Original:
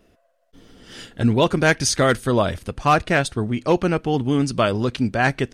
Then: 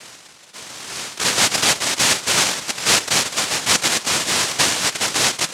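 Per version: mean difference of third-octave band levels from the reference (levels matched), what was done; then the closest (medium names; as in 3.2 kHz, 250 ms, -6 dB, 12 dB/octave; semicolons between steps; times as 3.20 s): 15.0 dB: spectral levelling over time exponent 0.6; high-pass 220 Hz; on a send: thinning echo 472 ms, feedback 64%, high-pass 900 Hz, level -11 dB; on the sum: noise-vocoded speech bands 1; trim -1.5 dB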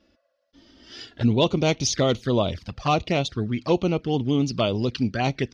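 4.0 dB: touch-sensitive flanger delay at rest 3.6 ms, full sweep at -16 dBFS; high-pass 49 Hz; hard clipper -8 dBFS, distortion -41 dB; resonant high shelf 7 kHz -12.5 dB, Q 3; trim -2 dB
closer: second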